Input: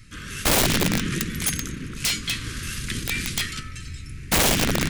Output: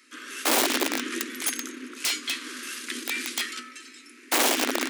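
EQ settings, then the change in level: rippled Chebyshev high-pass 240 Hz, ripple 3 dB; 0.0 dB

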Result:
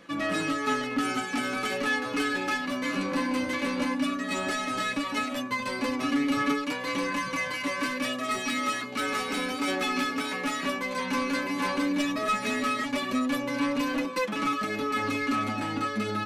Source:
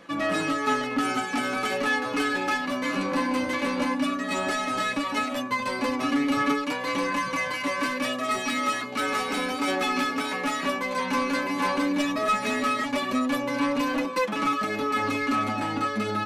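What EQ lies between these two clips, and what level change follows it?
peaking EQ 810 Hz -4.5 dB 1.3 oct; -1.0 dB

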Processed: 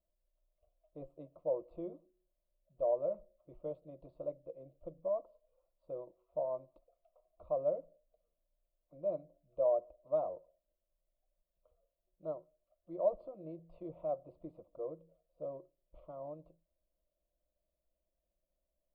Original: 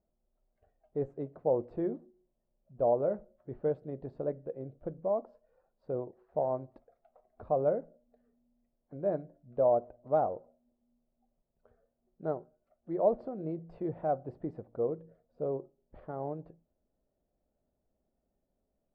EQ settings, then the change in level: static phaser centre 420 Hz, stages 6; static phaser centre 1.2 kHz, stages 8; -1.0 dB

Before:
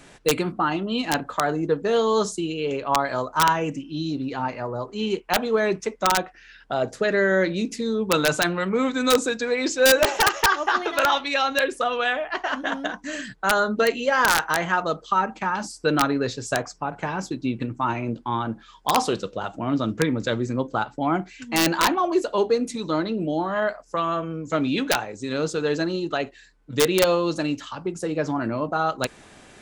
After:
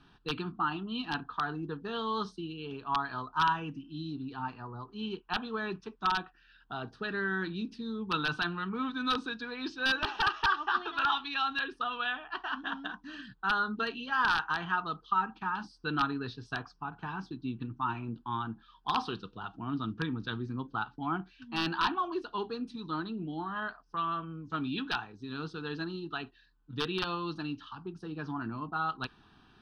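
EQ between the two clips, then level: dynamic bell 2.3 kHz, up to +5 dB, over -33 dBFS, Q 0.72; distance through air 120 m; static phaser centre 2.1 kHz, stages 6; -8.0 dB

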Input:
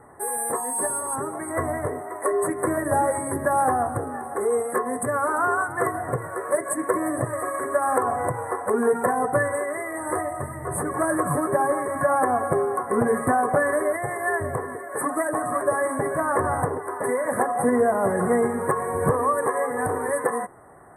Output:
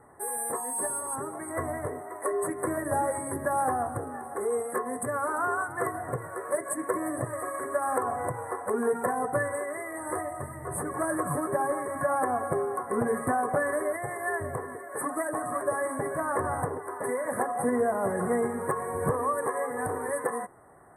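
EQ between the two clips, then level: treble shelf 9.8 kHz +3 dB; -6.0 dB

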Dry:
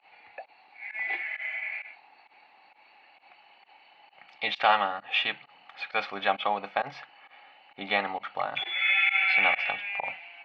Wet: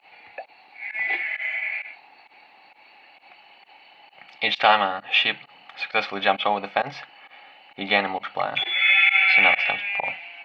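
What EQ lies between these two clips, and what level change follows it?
peaking EQ 1.1 kHz -4.5 dB 1.8 oct; +8.5 dB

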